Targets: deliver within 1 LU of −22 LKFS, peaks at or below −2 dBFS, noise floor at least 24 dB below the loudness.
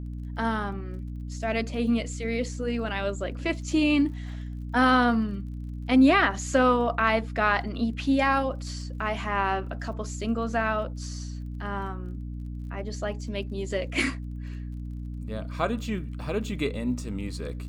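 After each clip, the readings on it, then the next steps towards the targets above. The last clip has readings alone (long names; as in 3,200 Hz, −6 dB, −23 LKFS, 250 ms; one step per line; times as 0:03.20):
crackle rate 30 per second; mains hum 60 Hz; hum harmonics up to 300 Hz; level of the hum −32 dBFS; integrated loudness −27.0 LKFS; sample peak −8.0 dBFS; target loudness −22.0 LKFS
→ click removal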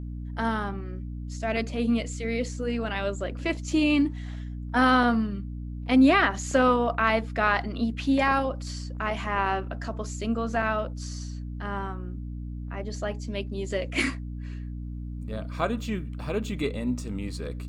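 crackle rate 0.51 per second; mains hum 60 Hz; hum harmonics up to 240 Hz; level of the hum −33 dBFS
→ mains-hum notches 60/120/180/240 Hz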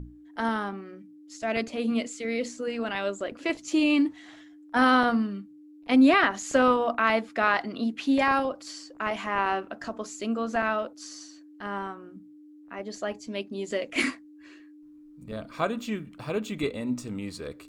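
mains hum none found; integrated loudness −27.0 LKFS; sample peak −8.0 dBFS; target loudness −22.0 LKFS
→ level +5 dB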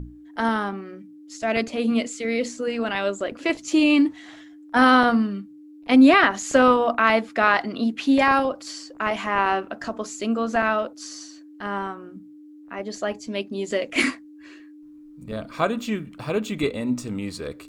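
integrated loudness −22.0 LKFS; sample peak −3.0 dBFS; background noise floor −46 dBFS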